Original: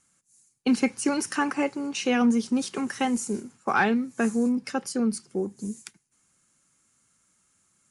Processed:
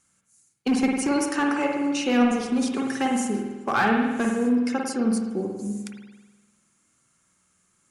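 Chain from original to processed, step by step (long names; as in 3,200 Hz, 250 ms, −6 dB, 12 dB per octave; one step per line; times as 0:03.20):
asymmetric clip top −18.5 dBFS, bottom −16 dBFS
spring reverb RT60 1.2 s, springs 49 ms, chirp 70 ms, DRR 0.5 dB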